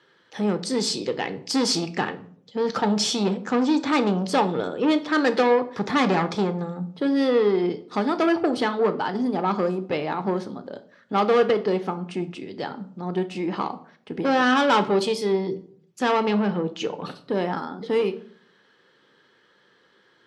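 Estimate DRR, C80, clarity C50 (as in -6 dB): 9.0 dB, 19.5 dB, 15.0 dB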